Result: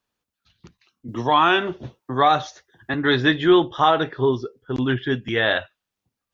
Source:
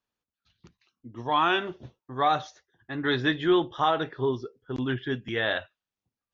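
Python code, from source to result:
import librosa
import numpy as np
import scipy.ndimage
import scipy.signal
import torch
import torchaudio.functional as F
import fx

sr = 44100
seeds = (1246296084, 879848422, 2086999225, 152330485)

y = fx.band_squash(x, sr, depth_pct=40, at=(1.08, 2.94))
y = y * 10.0 ** (7.0 / 20.0)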